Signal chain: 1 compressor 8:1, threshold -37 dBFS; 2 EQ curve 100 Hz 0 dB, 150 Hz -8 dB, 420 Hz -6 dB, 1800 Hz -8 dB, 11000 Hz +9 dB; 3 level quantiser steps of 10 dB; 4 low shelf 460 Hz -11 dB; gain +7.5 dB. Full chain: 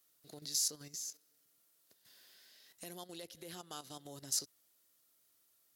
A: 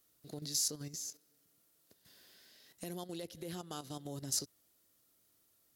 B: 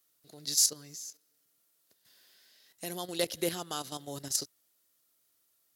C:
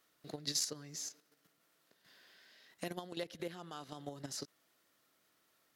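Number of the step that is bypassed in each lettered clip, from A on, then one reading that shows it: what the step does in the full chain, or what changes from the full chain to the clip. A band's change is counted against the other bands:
4, 125 Hz band +8.5 dB; 1, momentary loudness spread change -7 LU; 2, 8 kHz band -10.5 dB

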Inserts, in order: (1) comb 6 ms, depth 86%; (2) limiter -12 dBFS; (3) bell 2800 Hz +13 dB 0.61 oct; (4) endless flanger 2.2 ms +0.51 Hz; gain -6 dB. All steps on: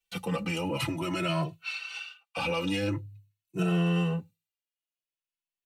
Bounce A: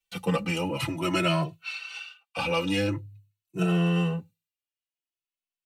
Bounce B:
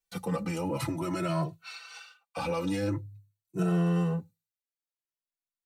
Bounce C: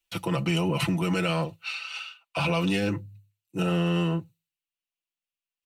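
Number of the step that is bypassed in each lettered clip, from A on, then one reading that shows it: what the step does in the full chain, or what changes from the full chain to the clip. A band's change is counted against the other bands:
2, mean gain reduction 1.5 dB; 3, 4 kHz band -8.0 dB; 4, momentary loudness spread change -1 LU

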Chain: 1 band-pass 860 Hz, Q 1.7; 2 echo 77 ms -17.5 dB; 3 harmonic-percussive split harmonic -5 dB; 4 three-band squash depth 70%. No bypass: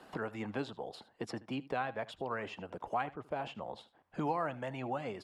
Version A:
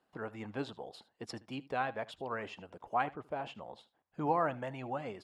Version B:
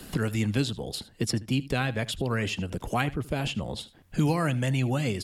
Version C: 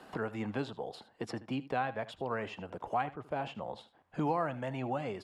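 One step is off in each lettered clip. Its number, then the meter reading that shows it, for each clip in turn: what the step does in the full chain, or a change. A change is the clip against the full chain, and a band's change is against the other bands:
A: 4, crest factor change +3.0 dB; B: 1, 1 kHz band -10.0 dB; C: 3, 125 Hz band +2.0 dB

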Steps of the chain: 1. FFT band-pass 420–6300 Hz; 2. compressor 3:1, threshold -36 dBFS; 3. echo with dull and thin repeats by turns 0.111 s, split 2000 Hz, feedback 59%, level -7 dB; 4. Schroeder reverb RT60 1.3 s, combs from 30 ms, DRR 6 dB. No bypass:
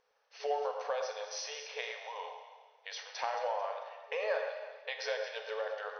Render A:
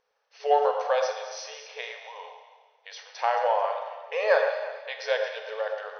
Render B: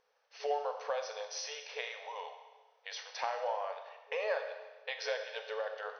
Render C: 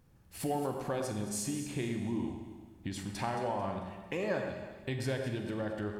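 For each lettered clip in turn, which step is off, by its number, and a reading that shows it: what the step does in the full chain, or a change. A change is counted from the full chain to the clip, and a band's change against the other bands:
2, mean gain reduction 5.0 dB; 3, echo-to-direct -3.0 dB to -6.0 dB; 1, 4 kHz band -2.5 dB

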